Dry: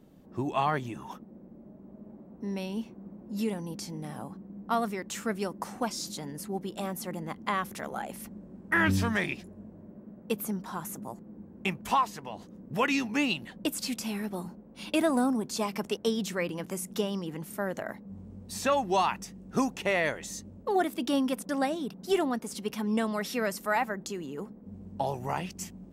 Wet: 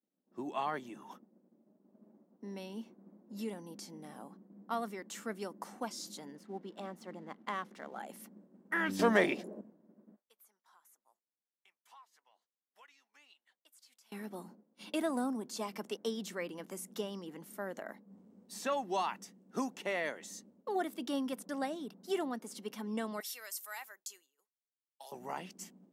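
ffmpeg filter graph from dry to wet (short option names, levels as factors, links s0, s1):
-filter_complex "[0:a]asettb=1/sr,asplit=3[s0][s1][s2];[s0]atrim=end=6.354[s3];[s1]atrim=start=6.35:end=7.99,asetpts=PTS-STARTPTS,afade=t=in:d=0.004:c=qsin,afade=t=out:st=1.636:d=0.004:c=qsin,adynamicsmooth=sensitivity=5.5:basefreq=3900,aeval=exprs='sgn(val(0))*max(abs(val(0))-0.00133,0)':c=same[s4];[s2]atrim=start=7.986[s5];[s3][s4]acrossfade=d=0.004:c1=hsin:c2=qsin[s6];[s6][s5]acrossfade=d=0.004:c1=qsin:c2=hsin,asettb=1/sr,asplit=3[s7][s8][s9];[s7]atrim=end=8.994[s10];[s8]atrim=start=8.99:end=9.61,asetpts=PTS-STARTPTS,afade=t=in:d=0.004:c=qsin,afade=t=out:st=0.616:d=0.004:c=qsin,equalizer=f=530:t=o:w=1.6:g=11,acontrast=67[s11];[s9]atrim=start=9.606[s12];[s10][s11]acrossfade=d=0.004:c1=hsin:c2=qsin[s13];[s13][s12]acrossfade=d=0.004:c1=qsin:c2=hsin,asettb=1/sr,asplit=3[s14][s15][s16];[s14]atrim=end=10.164[s17];[s15]atrim=start=10.16:end=14.12,asetpts=PTS-STARTPTS,afade=t=in:d=0.004:c=qsin,afade=t=out:st=3.956:d=0.004:c=qsin,highpass=1000,bandreject=f=2700:w=27,acompressor=threshold=0.00501:ratio=5:attack=3.2:release=140:knee=1:detection=peak[s18];[s16]atrim=start=14.116[s19];[s17][s18]acrossfade=d=0.004:c1=hsin:c2=qsin[s20];[s20][s19]acrossfade=d=0.004:c1=qsin:c2=hsin,asettb=1/sr,asplit=3[s21][s22][s23];[s21]atrim=end=23.204[s24];[s22]atrim=start=23.2:end=25.12,asetpts=PTS-STARTPTS,afade=t=in:d=0.004:c=qsin,afade=t=out:st=1.916:d=0.004:c=qsin,highpass=370,aderivative,acontrast=47[s25];[s23]atrim=start=25.116[s26];[s24][s25]acrossfade=d=0.004:c1=hsin:c2=qsin[s27];[s27][s26]acrossfade=d=0.004:c1=qsin:c2=hsin,bandreject=f=2500:w=15,agate=range=0.0224:threshold=0.00794:ratio=3:detection=peak,highpass=f=200:w=0.5412,highpass=f=200:w=1.3066,volume=0.398"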